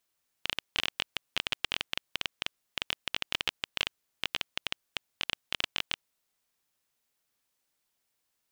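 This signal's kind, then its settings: random clicks 14/s -10.5 dBFS 5.51 s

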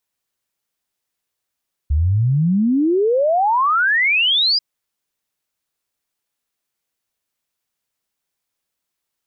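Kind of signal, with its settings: log sweep 69 Hz -> 5000 Hz 2.69 s -13 dBFS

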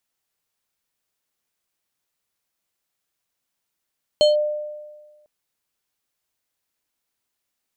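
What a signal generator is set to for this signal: FM tone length 1.05 s, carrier 600 Hz, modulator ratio 6.14, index 0.64, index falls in 0.15 s linear, decay 1.42 s, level -10 dB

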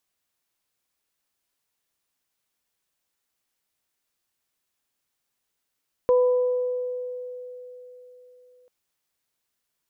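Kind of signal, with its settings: additive tone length 2.59 s, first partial 498 Hz, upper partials -13 dB, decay 3.87 s, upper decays 1.45 s, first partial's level -14.5 dB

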